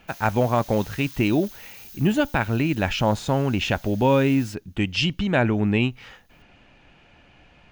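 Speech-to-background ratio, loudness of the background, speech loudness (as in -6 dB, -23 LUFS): 19.5 dB, -42.5 LUFS, -23.0 LUFS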